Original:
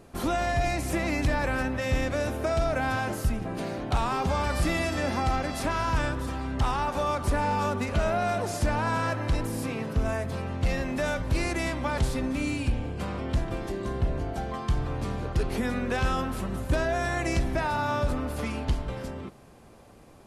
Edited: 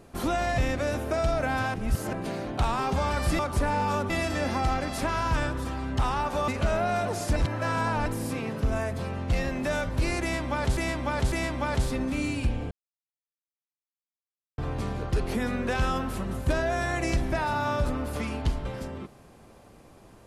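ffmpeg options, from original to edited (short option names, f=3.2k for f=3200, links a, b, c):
-filter_complex "[0:a]asplit=13[a][b][c][d][e][f][g][h][i][j][k][l][m];[a]atrim=end=0.582[n];[b]atrim=start=1.908:end=3.072[o];[c]atrim=start=3.068:end=3.462,asetpts=PTS-STARTPTS,areverse[p];[d]atrim=start=3.458:end=4.722[q];[e]atrim=start=7.098:end=7.812[r];[f]atrim=start=4.718:end=7.102[s];[g]atrim=start=7.808:end=8.692[t];[h]atrim=start=8.688:end=9.392,asetpts=PTS-STARTPTS,areverse[u];[i]atrim=start=9.388:end=12.102[v];[j]atrim=start=11.548:end=12.102[w];[k]atrim=start=11.548:end=12.94,asetpts=PTS-STARTPTS,afade=t=out:st=1.388:d=0.004:c=hsin[x];[l]atrim=start=12.94:end=14.81,asetpts=PTS-STARTPTS,volume=0[y];[m]atrim=start=14.81,asetpts=PTS-STARTPTS,afade=t=in:d=0.004:c=hsin[z];[n][o]acrossfade=d=0.004:c1=hsin:c2=hsin[aa];[aa][p]acrossfade=d=0.004:c1=hsin:c2=hsin[ab];[ab][q]acrossfade=d=0.004:c1=hsin:c2=hsin[ac];[ac][r]acrossfade=d=0.004:c1=hsin:c2=hsin[ad];[ad][s]acrossfade=d=0.004:c1=hsin:c2=hsin[ae];[ae][t]acrossfade=d=0.004:c1=hsin:c2=hsin[af];[af][u]acrossfade=d=0.004:c1=hsin:c2=hsin[ag];[ag][v]acrossfade=d=0.004:c1=hsin:c2=hsin[ah];[ah][w]acrossfade=d=0.004:c1=hsin:c2=hsin[ai];[x][y][z]concat=n=3:v=0:a=1[aj];[ai][aj]acrossfade=d=0.004:c1=hsin:c2=hsin"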